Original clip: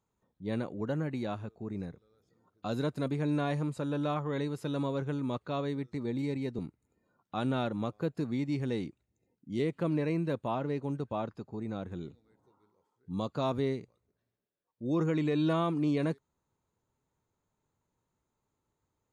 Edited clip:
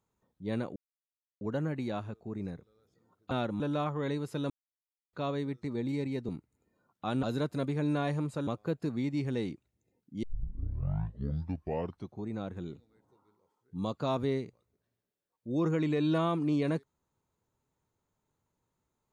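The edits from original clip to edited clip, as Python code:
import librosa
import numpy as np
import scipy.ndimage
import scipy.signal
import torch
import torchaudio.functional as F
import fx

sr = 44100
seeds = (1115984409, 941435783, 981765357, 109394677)

y = fx.edit(x, sr, fx.insert_silence(at_s=0.76, length_s=0.65),
    fx.swap(start_s=2.66, length_s=1.24, other_s=7.53, other_length_s=0.29),
    fx.silence(start_s=4.8, length_s=0.63),
    fx.tape_start(start_s=9.58, length_s=2.06), tone=tone)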